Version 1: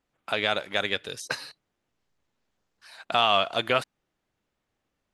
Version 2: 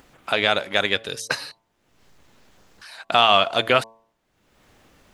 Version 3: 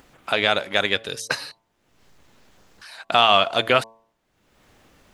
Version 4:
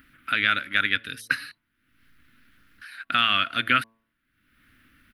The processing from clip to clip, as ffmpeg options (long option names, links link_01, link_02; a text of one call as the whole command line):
ffmpeg -i in.wav -af "bandreject=frequency=112.3:width_type=h:width=4,bandreject=frequency=224.6:width_type=h:width=4,bandreject=frequency=336.9:width_type=h:width=4,bandreject=frequency=449.2:width_type=h:width=4,bandreject=frequency=561.5:width_type=h:width=4,bandreject=frequency=673.8:width_type=h:width=4,bandreject=frequency=786.1:width_type=h:width=4,bandreject=frequency=898.4:width_type=h:width=4,bandreject=frequency=1010.7:width_type=h:width=4,bandreject=frequency=1123:width_type=h:width=4,acompressor=mode=upward:threshold=-45dB:ratio=2.5,volume=6dB" out.wav
ffmpeg -i in.wav -af anull out.wav
ffmpeg -i in.wav -af "firequalizer=gain_entry='entry(100,0);entry(190,-4);entry(260,5);entry(400,-14);entry(840,-21);entry(1400,7);entry(7100,-16);entry(10000,2)':delay=0.05:min_phase=1,volume=-3.5dB" out.wav